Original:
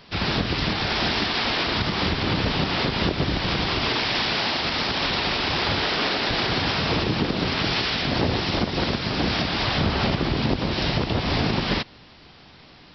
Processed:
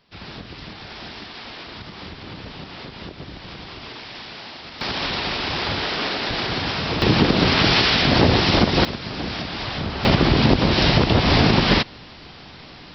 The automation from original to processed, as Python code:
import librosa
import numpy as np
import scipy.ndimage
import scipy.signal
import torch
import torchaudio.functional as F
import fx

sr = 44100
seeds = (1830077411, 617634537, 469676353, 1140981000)

y = fx.gain(x, sr, db=fx.steps((0.0, -13.0), (4.81, -1.0), (7.02, 7.0), (8.85, -4.5), (10.05, 7.0)))